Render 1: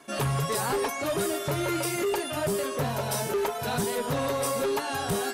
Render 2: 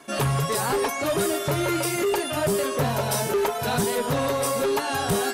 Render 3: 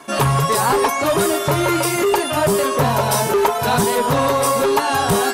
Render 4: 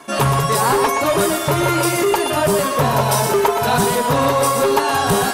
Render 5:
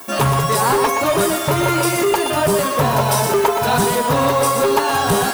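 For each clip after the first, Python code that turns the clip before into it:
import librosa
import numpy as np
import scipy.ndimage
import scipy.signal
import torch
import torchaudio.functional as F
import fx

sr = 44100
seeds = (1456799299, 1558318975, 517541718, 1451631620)

y1 = fx.rider(x, sr, range_db=10, speed_s=0.5)
y1 = y1 * 10.0 ** (4.0 / 20.0)
y2 = fx.peak_eq(y1, sr, hz=1000.0, db=6.0, octaves=0.59)
y2 = y2 * 10.0 ** (6.0 / 20.0)
y3 = y2 + 10.0 ** (-7.5 / 20.0) * np.pad(y2, (int(121 * sr / 1000.0), 0))[:len(y2)]
y4 = fx.dmg_noise_colour(y3, sr, seeds[0], colour='violet', level_db=-38.0)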